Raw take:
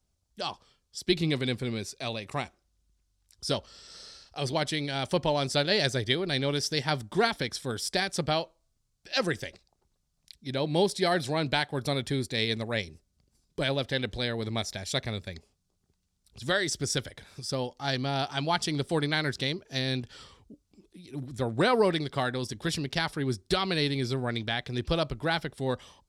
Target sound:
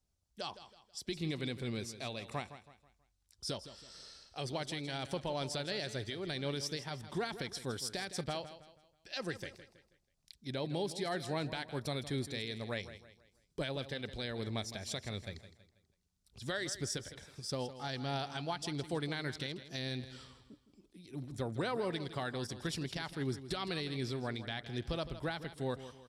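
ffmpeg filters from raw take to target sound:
ffmpeg -i in.wav -af "alimiter=limit=-21dB:level=0:latency=1:release=204,aecho=1:1:162|324|486|648:0.224|0.0851|0.0323|0.0123,volume=-6dB" out.wav

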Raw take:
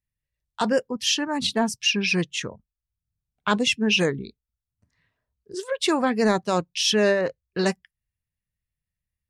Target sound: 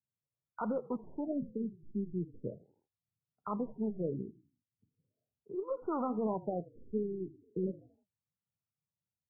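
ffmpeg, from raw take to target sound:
ffmpeg -i in.wav -filter_complex "[0:a]lowpass=frequency=3800:width_type=q:width=1.6,acompressor=threshold=-22dB:ratio=6,alimiter=limit=-20.5dB:level=0:latency=1:release=80,equalizer=frequency=2900:width=3.7:gain=11,asplit=2[link_01][link_02];[link_02]asplit=4[link_03][link_04][link_05][link_06];[link_03]adelay=80,afreqshift=-36,volume=-19dB[link_07];[link_04]adelay=160,afreqshift=-72,volume=-25.9dB[link_08];[link_05]adelay=240,afreqshift=-108,volume=-32.9dB[link_09];[link_06]adelay=320,afreqshift=-144,volume=-39.8dB[link_10];[link_07][link_08][link_09][link_10]amix=inputs=4:normalize=0[link_11];[link_01][link_11]amix=inputs=2:normalize=0,adynamicequalizer=threshold=0.0224:dfrequency=2300:dqfactor=0.95:tfrequency=2300:tqfactor=0.95:attack=5:release=100:ratio=0.375:range=2:mode=boostabove:tftype=bell,highpass=frequency=110:width=0.5412,highpass=frequency=110:width=1.3066,aeval=exprs='0.447*(cos(1*acos(clip(val(0)/0.447,-1,1)))-cos(1*PI/2))+0.00501*(cos(6*acos(clip(val(0)/0.447,-1,1)))-cos(6*PI/2))':channel_layout=same,flanger=delay=0.2:depth=8.6:regen=81:speed=1.4:shape=triangular,afftfilt=real='re*lt(b*sr/1024,400*pow(1500/400,0.5+0.5*sin(2*PI*0.38*pts/sr)))':imag='im*lt(b*sr/1024,400*pow(1500/400,0.5+0.5*sin(2*PI*0.38*pts/sr)))':win_size=1024:overlap=0.75" out.wav

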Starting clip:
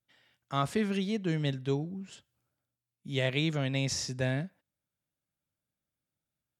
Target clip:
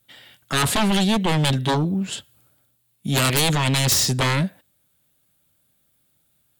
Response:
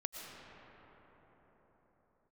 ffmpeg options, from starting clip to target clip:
-af "aeval=exprs='0.188*sin(PI/2*5.62*val(0)/0.188)':channel_layout=same,aexciter=amount=1.8:drive=2.2:freq=3100,volume=-1.5dB"

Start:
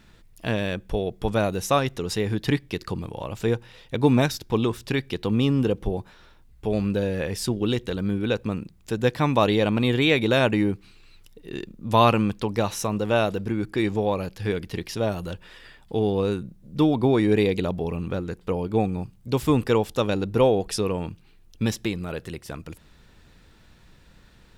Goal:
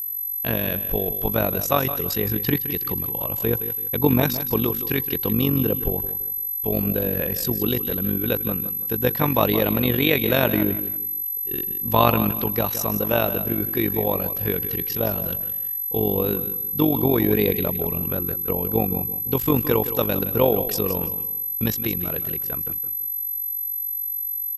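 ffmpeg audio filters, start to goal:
ffmpeg -i in.wav -af "agate=range=-11dB:threshold=-41dB:ratio=16:detection=peak,aeval=exprs='val(0)+0.0501*sin(2*PI*12000*n/s)':channel_layout=same,tremolo=f=47:d=0.71,aecho=1:1:167|334|501:0.251|0.0754|0.0226,volume=3dB" out.wav

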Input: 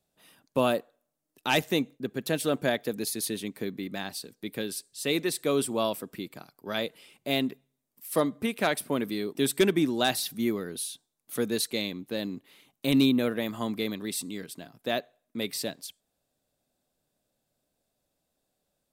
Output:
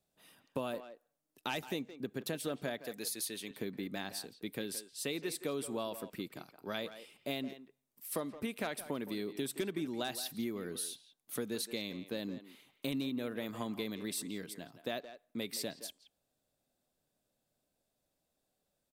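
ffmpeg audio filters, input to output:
ffmpeg -i in.wav -filter_complex "[0:a]asettb=1/sr,asplit=3[link_01][link_02][link_03];[link_01]atrim=end=2.814[link_04];[link_02]atrim=start=2.81:end=3.51,asetpts=PTS-STARTPTS,afade=type=in:duration=0.004:curve=qsin,afade=type=out:start_time=0.696:duration=0.004:curve=qsin,lowshelf=frequency=440:gain=-11.5[link_05];[link_03]atrim=start=3.506[link_06];[link_04][link_05]acrossfade=duration=0.004:curve1=hsin:curve2=qsin[link_07];[link_07][link_06]acrossfade=duration=0.004:curve1=qsin:curve2=hsin,acompressor=threshold=-30dB:ratio=6,asplit=2[link_08][link_09];[link_09]adelay=170,highpass=300,lowpass=3400,asoftclip=type=hard:threshold=-28.5dB,volume=-11dB[link_10];[link_08][link_10]amix=inputs=2:normalize=0,volume=-4dB" out.wav

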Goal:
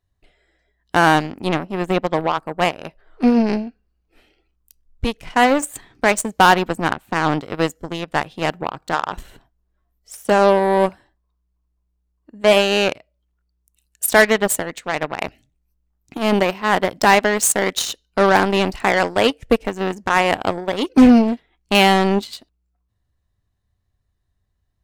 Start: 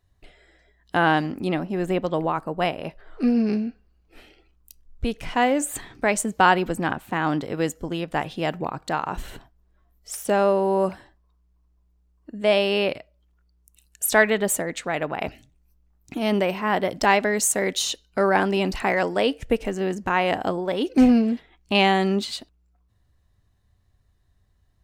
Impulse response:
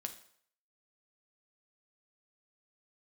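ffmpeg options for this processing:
-af "acontrast=76,aeval=exprs='0.794*(cos(1*acos(clip(val(0)/0.794,-1,1)))-cos(1*PI/2))+0.0891*(cos(7*acos(clip(val(0)/0.794,-1,1)))-cos(7*PI/2))':channel_layout=same"

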